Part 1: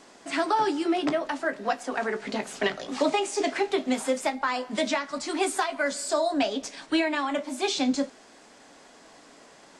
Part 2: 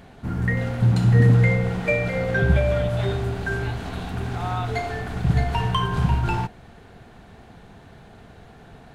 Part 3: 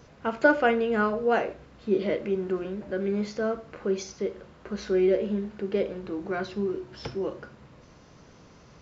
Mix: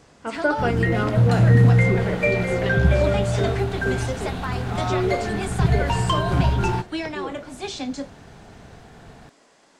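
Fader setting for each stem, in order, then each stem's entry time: -4.5 dB, +1.0 dB, -2.0 dB; 0.00 s, 0.35 s, 0.00 s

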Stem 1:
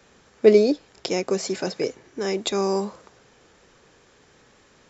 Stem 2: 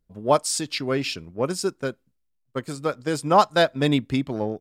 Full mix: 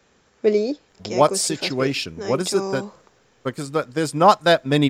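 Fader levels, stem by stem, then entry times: -4.0 dB, +3.0 dB; 0.00 s, 0.90 s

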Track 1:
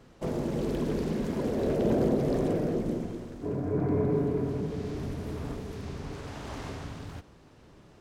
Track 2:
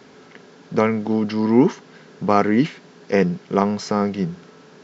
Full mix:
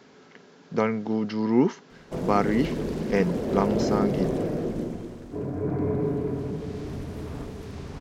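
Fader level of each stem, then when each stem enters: +0.5 dB, -6.0 dB; 1.90 s, 0.00 s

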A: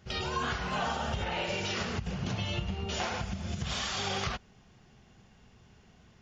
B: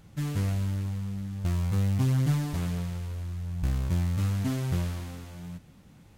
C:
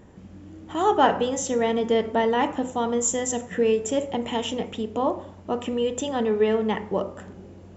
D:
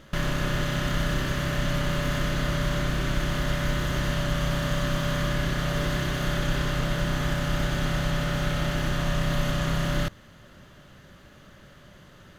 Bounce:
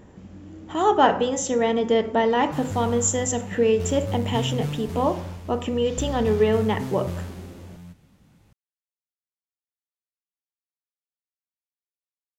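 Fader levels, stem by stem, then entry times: -14.5 dB, -3.0 dB, +1.5 dB, mute; 2.15 s, 2.35 s, 0.00 s, mute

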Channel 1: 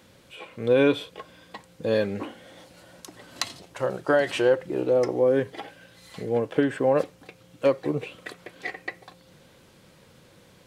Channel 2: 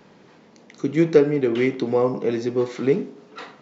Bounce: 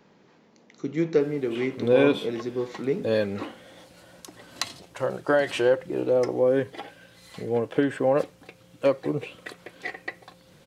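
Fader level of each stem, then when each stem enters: -0.5 dB, -7.0 dB; 1.20 s, 0.00 s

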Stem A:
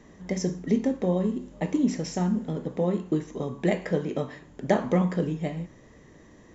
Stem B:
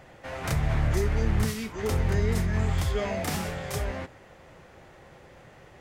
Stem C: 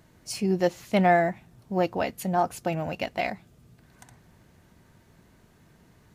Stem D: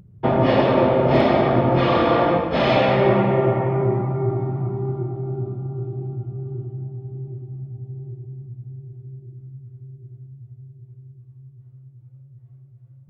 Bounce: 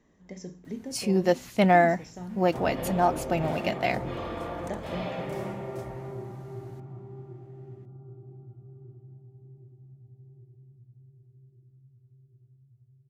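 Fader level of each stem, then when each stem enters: -13.5 dB, -19.5 dB, +1.0 dB, -18.0 dB; 0.00 s, 2.05 s, 0.65 s, 2.30 s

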